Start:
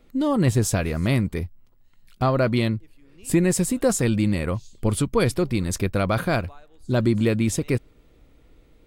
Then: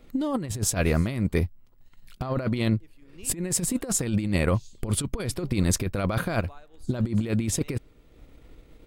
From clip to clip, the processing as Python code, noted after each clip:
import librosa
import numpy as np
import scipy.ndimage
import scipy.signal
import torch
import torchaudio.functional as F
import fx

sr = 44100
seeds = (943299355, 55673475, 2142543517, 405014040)

y = fx.transient(x, sr, attack_db=1, sustain_db=-5)
y = fx.over_compress(y, sr, threshold_db=-24.0, ratio=-0.5)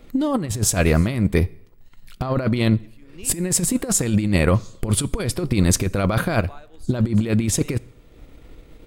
y = fx.rev_plate(x, sr, seeds[0], rt60_s=0.68, hf_ratio=0.9, predelay_ms=0, drr_db=19.5)
y = F.gain(torch.from_numpy(y), 6.0).numpy()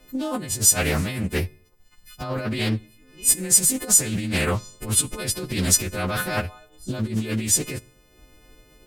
y = fx.freq_snap(x, sr, grid_st=3)
y = fx.doppler_dist(y, sr, depth_ms=0.41)
y = F.gain(torch.from_numpy(y), -6.0).numpy()